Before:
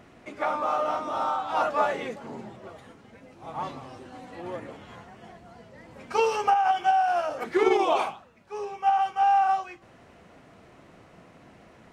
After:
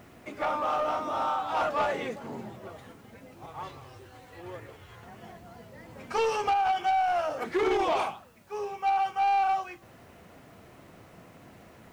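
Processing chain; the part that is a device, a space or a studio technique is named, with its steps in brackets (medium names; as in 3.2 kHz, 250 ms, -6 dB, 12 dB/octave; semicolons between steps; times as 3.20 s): 3.46–5.03 s: FFT filter 100 Hz 0 dB, 240 Hz -16 dB, 390 Hz -3 dB, 630 Hz -9 dB, 1.6 kHz -3 dB; open-reel tape (saturation -21 dBFS, distortion -13 dB; peaking EQ 99 Hz +3.5 dB 0.91 oct; white noise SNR 37 dB)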